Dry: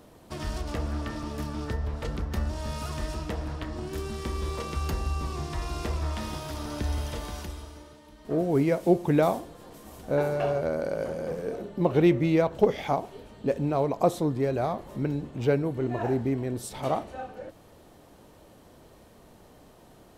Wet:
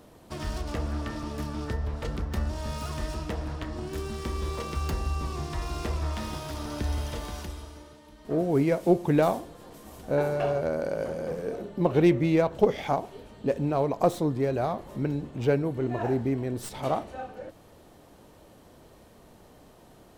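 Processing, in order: tracing distortion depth 0.037 ms

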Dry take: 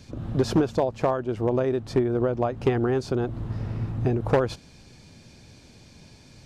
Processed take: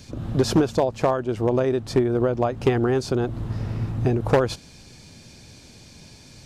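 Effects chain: treble shelf 4.2 kHz +7 dB; trim +2.5 dB

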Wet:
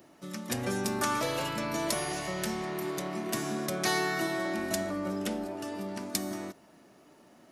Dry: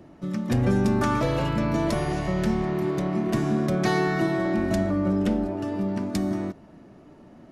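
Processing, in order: RIAA curve recording; trim -4 dB

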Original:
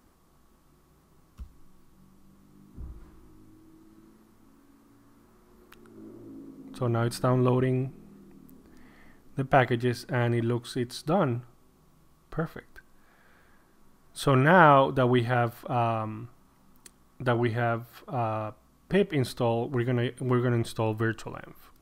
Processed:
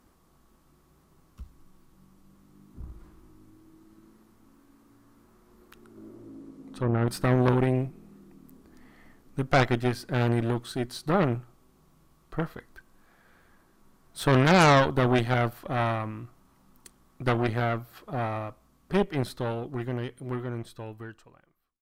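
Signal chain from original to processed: fade out at the end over 3.58 s; 6.14–7.08 s: low-pass that closes with the level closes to 1.4 kHz, closed at -24 dBFS; Chebyshev shaper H 5 -12 dB, 8 -8 dB, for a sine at -4 dBFS; trim -7.5 dB

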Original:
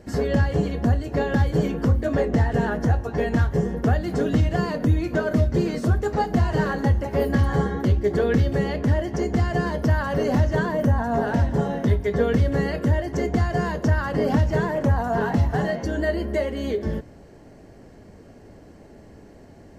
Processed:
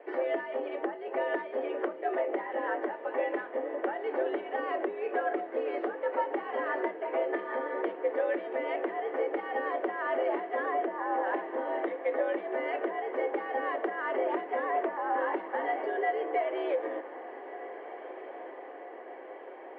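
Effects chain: compression, threshold -25 dBFS, peak gain reduction 11 dB; echo that smears into a reverb 1609 ms, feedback 67%, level -14.5 dB; mistuned SSB +100 Hz 270–2700 Hz

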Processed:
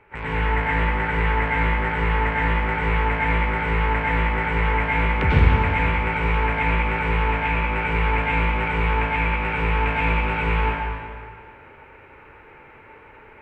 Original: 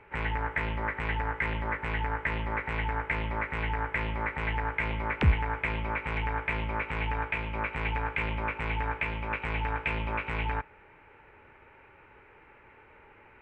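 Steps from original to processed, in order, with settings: plate-style reverb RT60 1.9 s, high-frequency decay 0.9×, pre-delay 85 ms, DRR -8.5 dB

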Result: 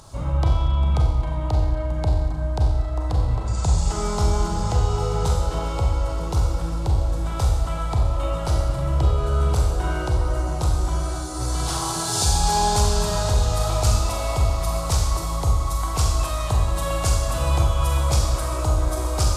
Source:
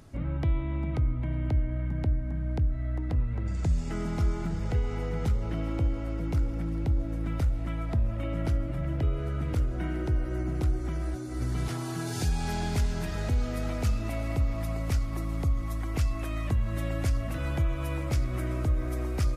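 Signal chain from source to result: graphic EQ 250/1000/2000/4000/8000 Hz -11/+11/-11/+7/+10 dB; Schroeder reverb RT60 1.1 s, combs from 30 ms, DRR -0.5 dB; trim +6 dB

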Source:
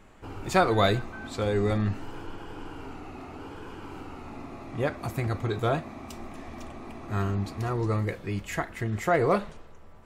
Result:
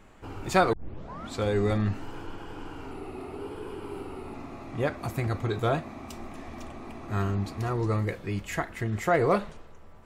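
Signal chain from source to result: 0.73 s: tape start 0.58 s; 2.91–4.34 s: graphic EQ with 31 bands 400 Hz +11 dB, 1.6 kHz -4 dB, 6.3 kHz -10 dB, 10 kHz +12 dB

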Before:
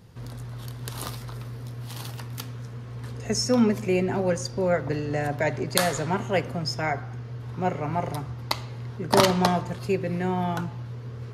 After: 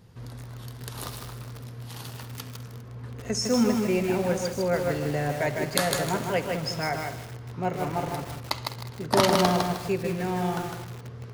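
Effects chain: 2.81–3.26 s: treble shelf 3 kHz -9.5 dB; multi-head delay 68 ms, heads all three, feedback 48%, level -18.5 dB; bit-crushed delay 155 ms, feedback 35%, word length 6-bit, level -3 dB; trim -2.5 dB

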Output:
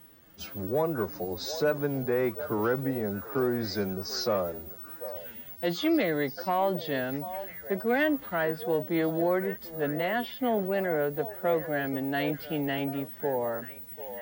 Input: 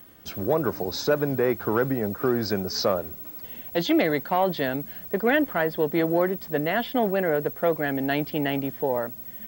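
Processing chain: wow and flutter 27 cents; time stretch by phase-locked vocoder 1.5×; repeats whose band climbs or falls 743 ms, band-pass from 640 Hz, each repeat 1.4 oct, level -10 dB; trim -4.5 dB

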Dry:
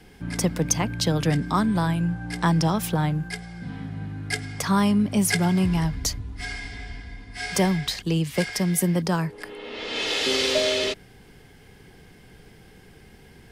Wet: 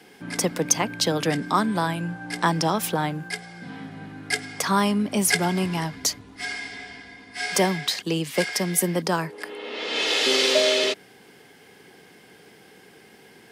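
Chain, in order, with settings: high-pass 270 Hz 12 dB/octave; trim +3 dB

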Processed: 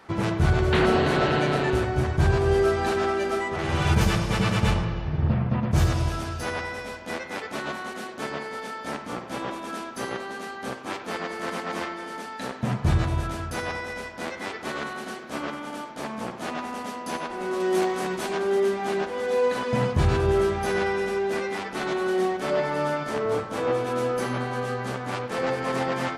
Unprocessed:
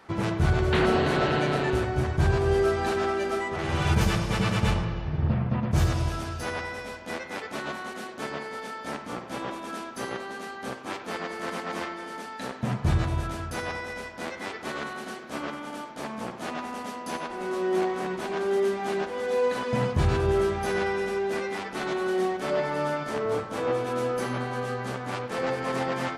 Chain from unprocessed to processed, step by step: 17.60–18.37 s: treble shelf 4.3 kHz +9.5 dB; trim +2 dB

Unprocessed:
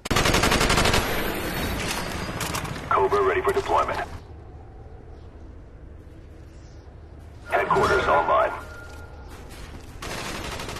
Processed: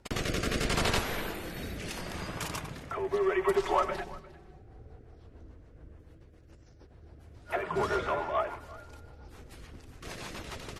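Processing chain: 3.13–4.62 s: comb 5.3 ms, depth 87%; 6.14–6.91 s: compressor with a negative ratio -46 dBFS, ratio -1; rotary cabinet horn 0.75 Hz, later 7 Hz, at 4.13 s; delay 354 ms -20 dB; trim -7.5 dB

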